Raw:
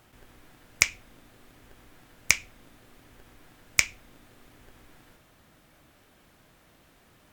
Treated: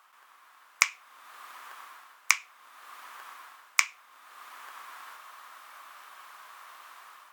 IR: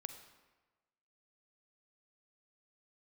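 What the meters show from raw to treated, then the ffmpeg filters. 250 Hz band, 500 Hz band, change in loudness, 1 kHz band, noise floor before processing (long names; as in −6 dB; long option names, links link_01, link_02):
below −20 dB, −8.0 dB, −1.5 dB, +8.5 dB, −60 dBFS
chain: -af "dynaudnorm=framelen=170:gausssize=5:maxgain=12dB,highpass=frequency=1100:width_type=q:width=4.9,volume=-4dB"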